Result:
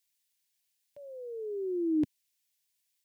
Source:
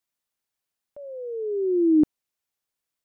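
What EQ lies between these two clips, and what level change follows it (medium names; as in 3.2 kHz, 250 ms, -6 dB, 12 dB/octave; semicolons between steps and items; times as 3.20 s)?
high-pass 150 Hz; high-order bell 510 Hz -15.5 dB; static phaser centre 520 Hz, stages 4; +7.5 dB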